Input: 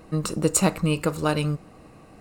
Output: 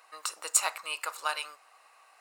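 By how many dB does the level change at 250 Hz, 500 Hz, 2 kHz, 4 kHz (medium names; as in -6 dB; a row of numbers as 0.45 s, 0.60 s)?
under -40 dB, -19.0 dB, -2.0 dB, -2.0 dB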